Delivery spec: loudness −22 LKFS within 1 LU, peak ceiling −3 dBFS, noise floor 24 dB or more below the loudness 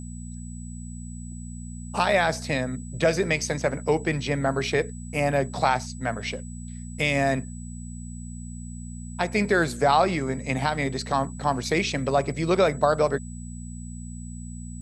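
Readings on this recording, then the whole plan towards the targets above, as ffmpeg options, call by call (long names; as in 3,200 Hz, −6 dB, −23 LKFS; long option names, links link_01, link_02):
mains hum 60 Hz; hum harmonics up to 240 Hz; level of the hum −35 dBFS; interfering tone 7,900 Hz; level of the tone −46 dBFS; integrated loudness −25.0 LKFS; sample peak −7.0 dBFS; target loudness −22.0 LKFS
→ -af "bandreject=frequency=60:width_type=h:width=4,bandreject=frequency=120:width_type=h:width=4,bandreject=frequency=180:width_type=h:width=4,bandreject=frequency=240:width_type=h:width=4"
-af "bandreject=frequency=7900:width=30"
-af "volume=3dB"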